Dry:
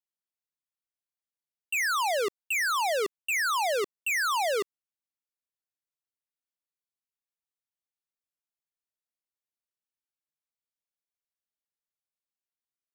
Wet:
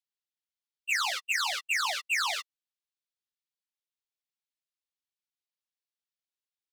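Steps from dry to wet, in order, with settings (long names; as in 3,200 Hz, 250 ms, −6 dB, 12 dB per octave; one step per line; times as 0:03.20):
time stretch by phase vocoder 0.52×
parametric band 3,700 Hz +14 dB 2.3 octaves
in parallel at −11.5 dB: gain into a clipping stage and back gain 25 dB
on the sum: leveller curve on the samples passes 1
Butterworth high-pass 700 Hz 48 dB per octave
level −9 dB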